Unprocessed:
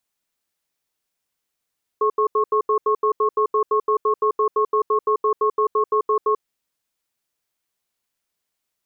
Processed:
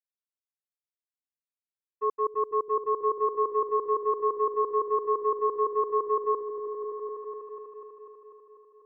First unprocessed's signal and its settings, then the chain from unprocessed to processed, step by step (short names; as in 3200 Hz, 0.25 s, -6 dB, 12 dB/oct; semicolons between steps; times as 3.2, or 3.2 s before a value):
cadence 427 Hz, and 1090 Hz, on 0.09 s, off 0.08 s, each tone -18 dBFS 4.35 s
expander -12 dBFS; on a send: repeats that get brighter 0.247 s, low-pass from 200 Hz, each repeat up 1 oct, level -3 dB